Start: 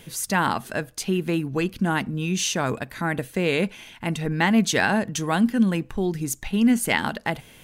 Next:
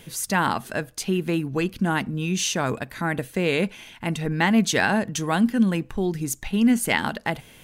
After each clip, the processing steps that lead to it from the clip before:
no processing that can be heard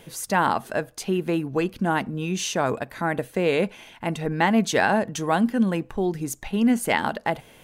parametric band 650 Hz +8 dB 2.1 octaves
level −4 dB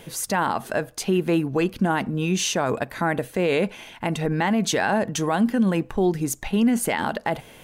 brickwall limiter −16.5 dBFS, peak gain reduction 9 dB
level +4 dB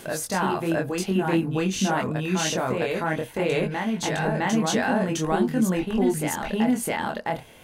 chorus effect 0.49 Hz, delay 20 ms, depth 5.8 ms
backwards echo 660 ms −3 dB

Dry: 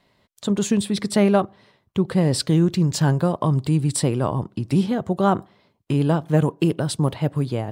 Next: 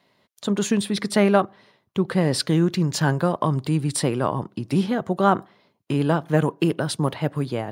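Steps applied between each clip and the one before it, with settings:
dynamic equaliser 1,600 Hz, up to +5 dB, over −40 dBFS, Q 1.2
Bessel high-pass filter 160 Hz
notch filter 7,800 Hz, Q 9.4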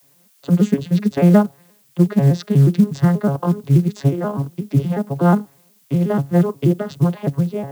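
vocoder with an arpeggio as carrier major triad, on C#3, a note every 121 ms
background noise blue −63 dBFS
floating-point word with a short mantissa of 4 bits
level +6.5 dB

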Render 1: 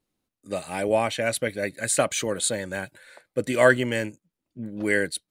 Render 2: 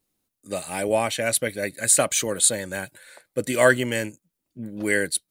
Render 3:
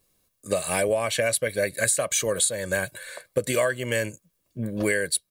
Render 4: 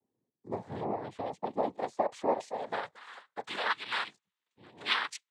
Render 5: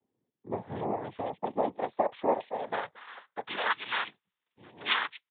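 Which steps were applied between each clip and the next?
high-shelf EQ 6,600 Hz +12 dB
comb filter 1.8 ms, depth 52%; downward compressor 16 to 1, threshold −27 dBFS, peak gain reduction 19.5 dB; level +7 dB
band-pass filter sweep 270 Hz → 2,000 Hz, 0:01.21–0:03.88; cochlear-implant simulation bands 6
downsampling to 8,000 Hz; level +2 dB

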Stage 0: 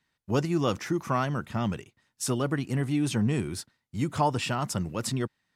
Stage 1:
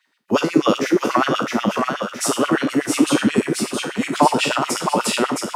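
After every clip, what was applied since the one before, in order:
peak hold with a decay on every bin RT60 0.49 s
echo with a time of its own for lows and highs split 470 Hz, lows 183 ms, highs 666 ms, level −4 dB
auto-filter high-pass sine 8.2 Hz 220–2,900 Hz
level +6.5 dB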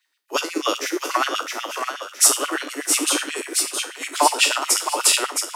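Butterworth high-pass 280 Hz 72 dB per octave
spectral tilt +3.5 dB per octave
expander for the loud parts 1.5 to 1, over −30 dBFS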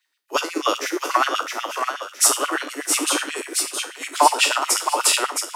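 dynamic equaliser 980 Hz, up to +5 dB, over −33 dBFS, Q 0.76
in parallel at −11.5 dB: soft clipping −6.5 dBFS, distortion −17 dB
on the sum: level −3.5 dB

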